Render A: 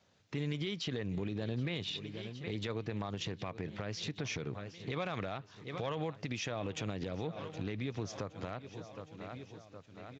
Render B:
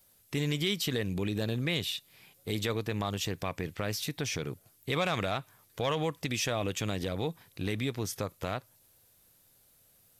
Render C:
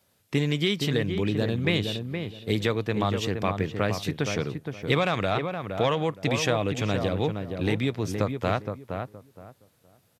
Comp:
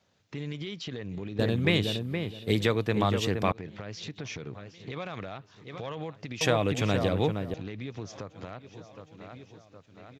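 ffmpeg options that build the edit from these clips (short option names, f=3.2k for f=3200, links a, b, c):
-filter_complex "[2:a]asplit=2[a][b];[0:a]asplit=3[c][d][e];[c]atrim=end=1.392[f];[a]atrim=start=1.388:end=3.522[g];[d]atrim=start=3.518:end=6.412[h];[b]atrim=start=6.408:end=7.542[i];[e]atrim=start=7.538[j];[f][g]acrossfade=d=0.004:c1=hsin:c2=hsin[k];[k][h]acrossfade=d=0.004:c1=hsin:c2=hsin[l];[l][i]acrossfade=d=0.004:c1=hsin:c2=hsin[m];[m][j]acrossfade=d=0.004:c1=hsin:c2=hsin"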